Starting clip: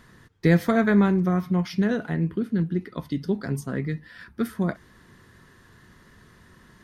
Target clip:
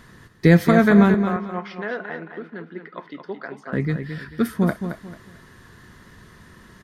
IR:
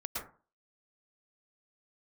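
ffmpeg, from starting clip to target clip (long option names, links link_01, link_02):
-filter_complex "[0:a]asettb=1/sr,asplit=3[link_01][link_02][link_03];[link_01]atrim=end=1.144[link_04];[link_02]atrim=start=1.14:end=3.73,asetpts=PTS-STARTPTS,afade=type=in:duration=0.004:curve=qsin,afade=type=out:start_time=2.586:duration=0.004:curve=qsin,highpass=640,lowpass=2100[link_05];[link_03]atrim=start=3.726[link_06];[link_04][link_05]acrossfade=duration=0.004:curve1=hsin:curve2=qsin[link_07];[link_07][link_06]acrossfade=duration=0.004:curve1=qsin:curve2=hsin,aecho=1:1:221|442|663:0.376|0.109|0.0316,volume=5dB"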